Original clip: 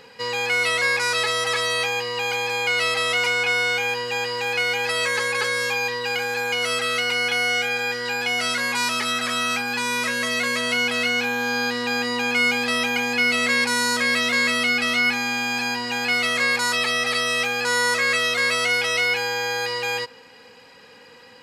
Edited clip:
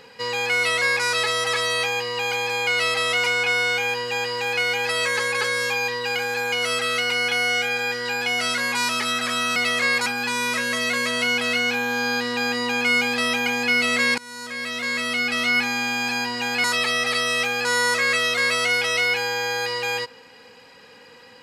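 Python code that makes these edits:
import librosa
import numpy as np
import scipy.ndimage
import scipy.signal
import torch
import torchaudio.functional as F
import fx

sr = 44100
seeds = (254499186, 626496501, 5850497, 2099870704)

y = fx.edit(x, sr, fx.fade_in_from(start_s=13.68, length_s=1.41, floor_db=-23.0),
    fx.move(start_s=16.14, length_s=0.5, to_s=9.56), tone=tone)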